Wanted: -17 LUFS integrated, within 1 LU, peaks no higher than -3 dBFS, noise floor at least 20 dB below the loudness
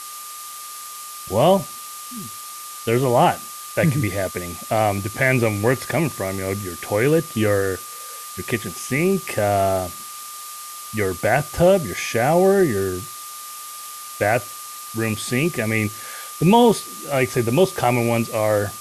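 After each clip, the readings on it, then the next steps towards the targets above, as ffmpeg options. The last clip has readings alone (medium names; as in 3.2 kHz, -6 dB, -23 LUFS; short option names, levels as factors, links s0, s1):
steady tone 1.2 kHz; tone level -37 dBFS; noise floor -35 dBFS; noise floor target -41 dBFS; loudness -20.5 LUFS; peak level -3.5 dBFS; loudness target -17.0 LUFS
-> -af "bandreject=f=1200:w=30"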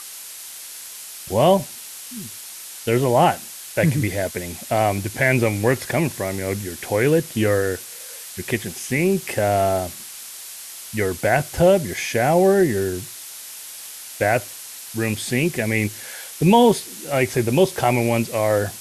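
steady tone not found; noise floor -37 dBFS; noise floor target -41 dBFS
-> -af "afftdn=nr=6:nf=-37"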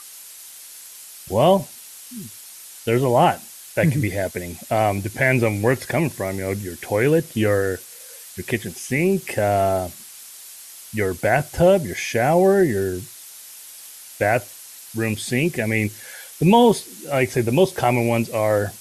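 noise floor -41 dBFS; loudness -20.5 LUFS; peak level -3.5 dBFS; loudness target -17.0 LUFS
-> -af "volume=1.5,alimiter=limit=0.708:level=0:latency=1"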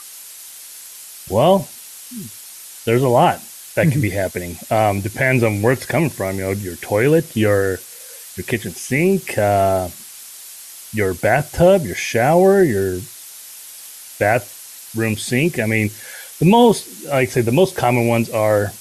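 loudness -17.5 LUFS; peak level -3.0 dBFS; noise floor -38 dBFS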